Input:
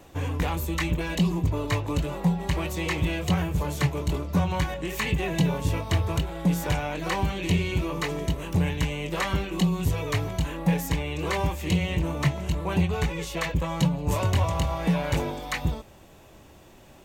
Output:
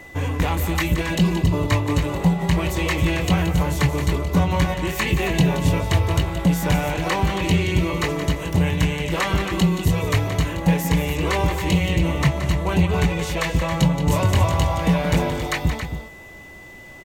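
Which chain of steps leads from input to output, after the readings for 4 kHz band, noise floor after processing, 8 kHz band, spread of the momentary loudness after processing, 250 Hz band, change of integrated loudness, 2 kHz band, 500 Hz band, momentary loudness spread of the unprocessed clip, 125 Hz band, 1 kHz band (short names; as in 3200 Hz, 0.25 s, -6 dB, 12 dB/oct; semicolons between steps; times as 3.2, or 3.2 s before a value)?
+6.0 dB, -41 dBFS, +6.0 dB, 4 LU, +6.0 dB, +6.0 dB, +6.5 dB, +6.0 dB, 4 LU, +6.0 dB, +6.0 dB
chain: loudspeakers at several distances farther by 60 m -10 dB, 94 m -9 dB; whine 2000 Hz -46 dBFS; gain +5 dB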